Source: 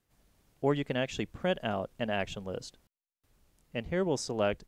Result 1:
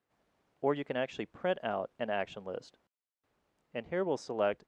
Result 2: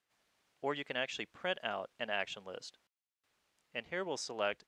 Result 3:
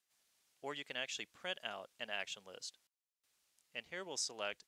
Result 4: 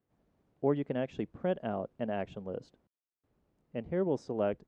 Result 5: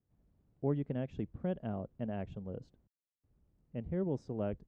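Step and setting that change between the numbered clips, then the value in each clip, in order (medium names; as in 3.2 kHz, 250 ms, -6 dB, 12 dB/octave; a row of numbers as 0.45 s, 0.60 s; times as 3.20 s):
band-pass filter, frequency: 830 Hz, 2.3 kHz, 6.1 kHz, 320 Hz, 110 Hz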